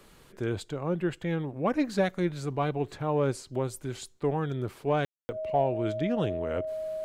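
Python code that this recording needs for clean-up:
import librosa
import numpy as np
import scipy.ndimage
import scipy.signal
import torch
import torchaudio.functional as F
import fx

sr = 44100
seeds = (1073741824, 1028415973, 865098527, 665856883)

y = fx.notch(x, sr, hz=630.0, q=30.0)
y = fx.fix_ambience(y, sr, seeds[0], print_start_s=0.0, print_end_s=0.5, start_s=5.05, end_s=5.29)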